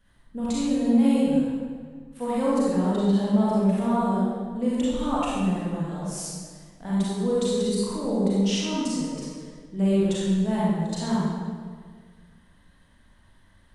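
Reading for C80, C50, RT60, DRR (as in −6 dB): −1.0 dB, −5.0 dB, 1.7 s, −8.0 dB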